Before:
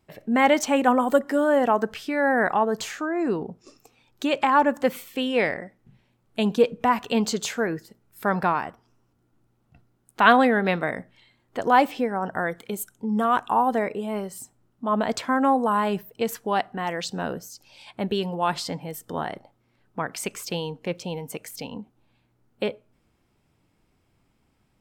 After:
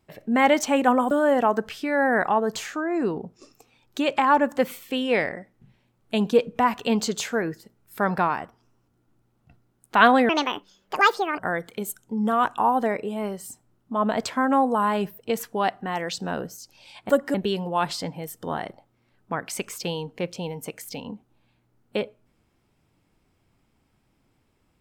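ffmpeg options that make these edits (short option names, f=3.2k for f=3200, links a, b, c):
-filter_complex "[0:a]asplit=6[a][b][c][d][e][f];[a]atrim=end=1.112[g];[b]atrim=start=1.358:end=10.544[h];[c]atrim=start=10.54:end=12.3,asetpts=PTS-STARTPTS,asetrate=71001,aresample=44100[i];[d]atrim=start=12.296:end=18.012[j];[e]atrim=start=1.108:end=1.362[k];[f]atrim=start=18.008[l];[g][h]acrossfade=d=0.004:c1=hsin:c2=hsin[m];[m][i]acrossfade=d=0.004:c1=hsin:c2=hsin[n];[n][j]acrossfade=d=0.004:c1=hsin:c2=hsin[o];[o][k]acrossfade=d=0.004:c1=hsin:c2=hsin[p];[p][l]acrossfade=d=0.004:c1=hsin:c2=hsin"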